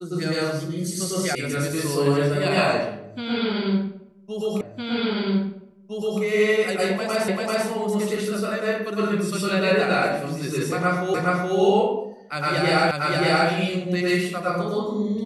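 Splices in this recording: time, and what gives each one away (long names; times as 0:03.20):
0:01.35: cut off before it has died away
0:04.61: the same again, the last 1.61 s
0:07.28: the same again, the last 0.39 s
0:11.14: the same again, the last 0.42 s
0:12.91: the same again, the last 0.58 s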